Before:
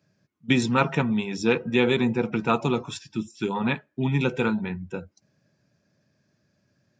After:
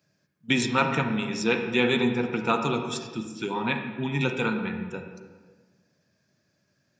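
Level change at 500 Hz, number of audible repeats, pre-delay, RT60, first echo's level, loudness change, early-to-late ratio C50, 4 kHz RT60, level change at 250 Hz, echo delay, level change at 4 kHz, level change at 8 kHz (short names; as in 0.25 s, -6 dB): -2.0 dB, none, 37 ms, 1.4 s, none, -1.5 dB, 6.0 dB, 1.0 s, -2.5 dB, none, +1.5 dB, +2.5 dB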